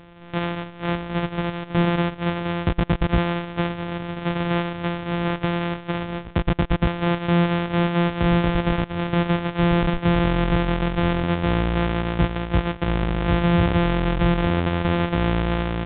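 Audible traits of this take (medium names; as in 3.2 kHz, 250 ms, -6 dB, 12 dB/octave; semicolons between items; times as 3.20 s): a buzz of ramps at a fixed pitch in blocks of 256 samples; A-law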